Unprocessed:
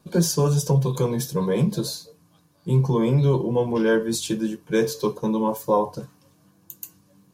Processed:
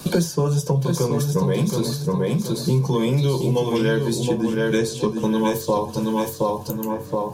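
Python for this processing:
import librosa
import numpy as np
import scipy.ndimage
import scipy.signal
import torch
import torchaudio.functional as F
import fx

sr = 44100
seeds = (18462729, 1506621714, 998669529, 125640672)

p1 = fx.steep_lowpass(x, sr, hz=9300.0, slope=36, at=(4.78, 5.18))
p2 = p1 + fx.echo_feedback(p1, sr, ms=722, feedback_pct=28, wet_db=-5.5, dry=0)
y = fx.band_squash(p2, sr, depth_pct=100)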